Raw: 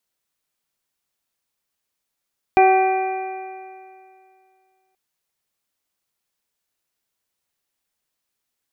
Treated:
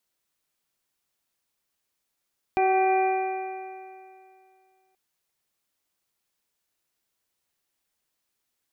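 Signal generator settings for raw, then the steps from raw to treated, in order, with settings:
stretched partials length 2.38 s, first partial 377 Hz, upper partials 4/-14.5/-14.5/-16/-7 dB, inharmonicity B 0.0033, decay 2.39 s, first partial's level -14 dB
peaking EQ 340 Hz +2.5 dB 0.24 oct; peak limiter -15 dBFS

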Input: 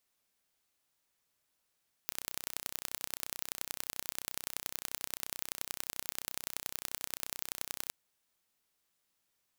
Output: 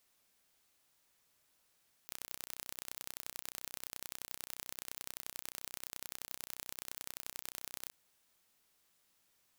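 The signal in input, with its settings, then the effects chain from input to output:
pulse train 31.5 per s, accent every 3, -7.5 dBFS 5.82 s
compressor with a negative ratio -48 dBFS, ratio -1

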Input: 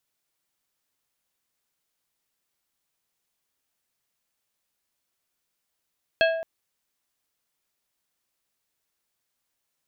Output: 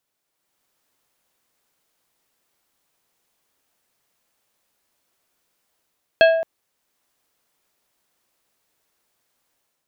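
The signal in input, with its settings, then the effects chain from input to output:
glass hit plate, length 0.22 s, lowest mode 655 Hz, decay 0.91 s, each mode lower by 3 dB, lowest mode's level -16.5 dB
peaking EQ 550 Hz +5.5 dB 3 oct; level rider gain up to 7 dB

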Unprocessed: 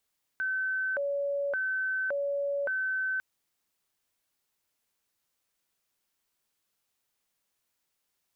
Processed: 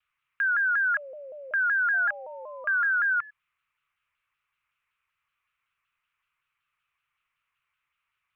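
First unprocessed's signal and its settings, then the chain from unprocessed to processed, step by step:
siren hi-lo 565–1530 Hz 0.88 per s sine -27.5 dBFS 2.80 s
FFT filter 140 Hz 0 dB, 220 Hz -16 dB, 790 Hz -9 dB, 1.2 kHz +12 dB, 1.7 kHz +4 dB, 2.5 kHz +11 dB, 4.6 kHz -17 dB; painted sound rise, 1.93–3.31 s, 680–1700 Hz -46 dBFS; vibrato with a chosen wave saw down 5.3 Hz, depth 160 cents

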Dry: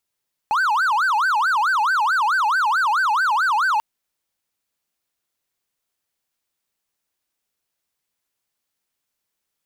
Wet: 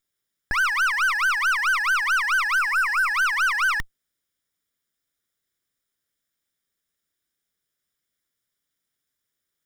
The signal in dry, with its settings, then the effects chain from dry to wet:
siren wail 831–1560 Hz 4.6 per s triangle -14 dBFS 3.29 s
comb filter that takes the minimum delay 0.56 ms; spectral replace 2.61–3.07 s, 2.7–6.7 kHz after

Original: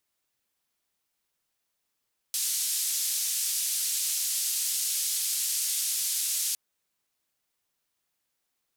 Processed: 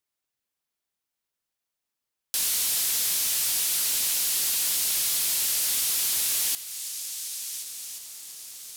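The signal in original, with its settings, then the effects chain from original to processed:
noise band 4.7–12 kHz, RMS -29 dBFS 4.21 s
shuffle delay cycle 1433 ms, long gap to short 3:1, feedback 47%, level -19.5 dB; dynamic bell 6.8 kHz, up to -6 dB, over -43 dBFS, Q 0.75; waveshaping leveller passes 3

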